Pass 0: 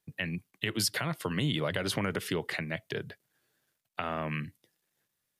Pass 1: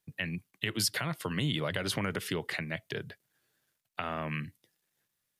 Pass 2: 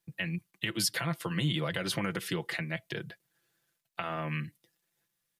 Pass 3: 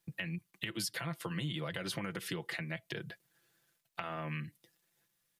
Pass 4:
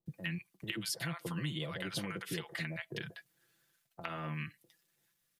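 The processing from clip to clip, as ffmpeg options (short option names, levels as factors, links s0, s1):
-af "equalizer=f=440:w=0.48:g=-2.5"
-af "aecho=1:1:5.9:0.65,volume=0.841"
-af "acompressor=threshold=0.00794:ratio=2.5,volume=1.33"
-filter_complex "[0:a]acrossover=split=750[s0][s1];[s1]adelay=60[s2];[s0][s2]amix=inputs=2:normalize=0"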